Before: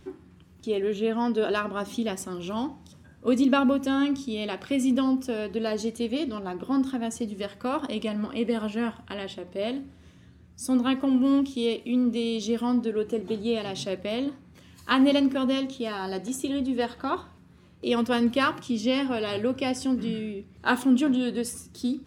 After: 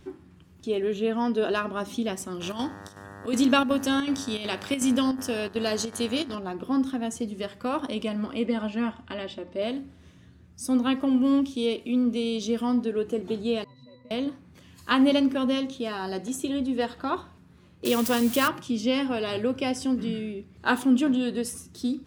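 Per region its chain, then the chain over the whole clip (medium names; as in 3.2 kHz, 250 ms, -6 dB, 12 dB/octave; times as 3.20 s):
2.40–6.34 s: treble shelf 2.6 kHz +10.5 dB + mains buzz 100 Hz, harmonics 19, -44 dBFS -2 dB/octave + square tremolo 2.7 Hz, depth 60%, duty 80%
8.45–9.62 s: distance through air 67 m + comb 3.4 ms, depth 41%
13.64–14.11 s: one-bit delta coder 64 kbps, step -34.5 dBFS + pitch-class resonator B, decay 0.29 s
17.85–18.48 s: zero-crossing glitches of -21 dBFS + three bands compressed up and down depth 40%
whole clip: none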